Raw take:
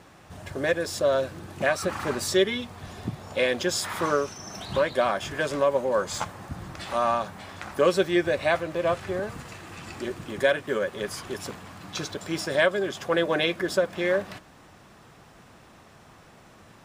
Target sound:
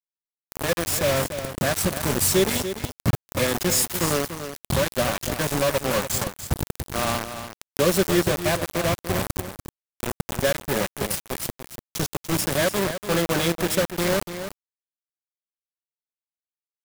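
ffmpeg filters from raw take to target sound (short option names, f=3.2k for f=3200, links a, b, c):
-filter_complex "[0:a]equalizer=f=3.2k:w=0.37:g=-12.5,acrossover=split=200|1000|5700[a][b][c][d];[a]dynaudnorm=f=460:g=3:m=12.5dB[e];[e][b][c][d]amix=inputs=4:normalize=0,crystalizer=i=5.5:c=0,acrusher=bits=3:mix=0:aa=0.000001,aecho=1:1:291:0.316"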